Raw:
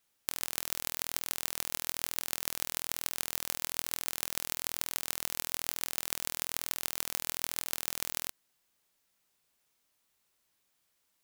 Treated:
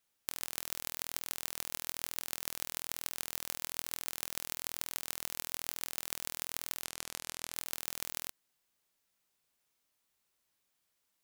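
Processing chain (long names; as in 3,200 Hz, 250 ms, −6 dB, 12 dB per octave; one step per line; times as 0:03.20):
0:06.84–0:07.54: low-pass filter 11,000 Hz 12 dB per octave
level −4 dB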